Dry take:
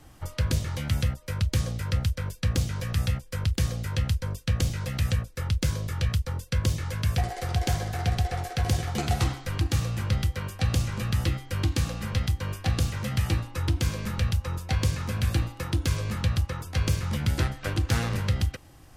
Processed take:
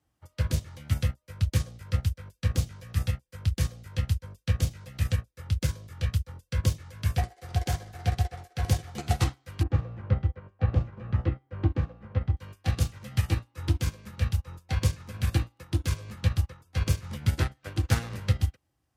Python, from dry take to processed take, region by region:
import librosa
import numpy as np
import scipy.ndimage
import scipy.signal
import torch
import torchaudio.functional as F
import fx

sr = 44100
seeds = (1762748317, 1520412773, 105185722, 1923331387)

y = fx.chain(x, sr, fx.lowpass(hz=1500.0, slope=12),
    fx.peak_eq(hz=470.0, db=4.0, octaves=1.4), at=(9.63, 12.37))
y = scipy.signal.sosfilt(scipy.signal.butter(4, 43.0, 'highpass', fs=sr, output='sos'), y)
y = fx.upward_expand(y, sr, threshold_db=-38.0, expansion=2.5)
y = y * librosa.db_to_amplitude(3.0)